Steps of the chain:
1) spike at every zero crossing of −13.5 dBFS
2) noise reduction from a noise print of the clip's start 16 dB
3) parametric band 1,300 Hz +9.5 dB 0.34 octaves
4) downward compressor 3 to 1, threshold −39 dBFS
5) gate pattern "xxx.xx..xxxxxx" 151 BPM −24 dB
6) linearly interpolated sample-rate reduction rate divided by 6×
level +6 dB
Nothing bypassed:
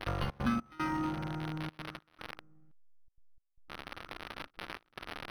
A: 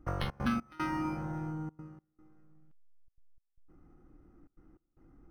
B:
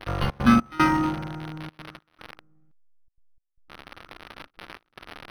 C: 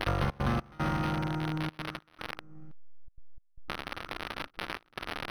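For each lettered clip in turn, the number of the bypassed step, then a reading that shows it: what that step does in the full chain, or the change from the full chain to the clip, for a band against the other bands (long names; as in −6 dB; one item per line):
1, distortion level −10 dB
4, average gain reduction 4.0 dB
2, 250 Hz band −4.0 dB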